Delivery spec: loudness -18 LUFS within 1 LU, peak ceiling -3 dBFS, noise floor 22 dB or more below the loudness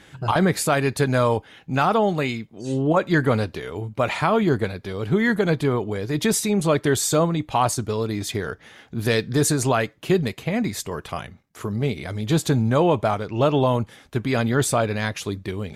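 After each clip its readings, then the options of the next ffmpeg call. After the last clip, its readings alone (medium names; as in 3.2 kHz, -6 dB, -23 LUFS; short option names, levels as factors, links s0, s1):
loudness -22.5 LUFS; peak level -8.0 dBFS; loudness target -18.0 LUFS
-> -af "volume=1.68"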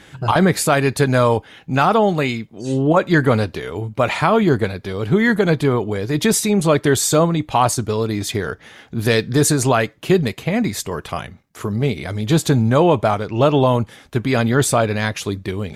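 loudness -18.0 LUFS; peak level -3.5 dBFS; noise floor -48 dBFS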